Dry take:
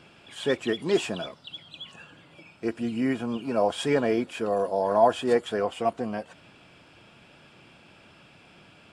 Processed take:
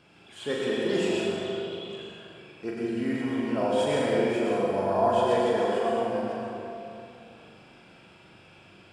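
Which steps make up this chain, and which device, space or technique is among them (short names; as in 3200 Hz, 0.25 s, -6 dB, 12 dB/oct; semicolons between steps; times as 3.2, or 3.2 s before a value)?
tunnel (flutter echo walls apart 7 m, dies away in 0.56 s; reverb RT60 2.9 s, pre-delay 94 ms, DRR -3.5 dB); gain -6.5 dB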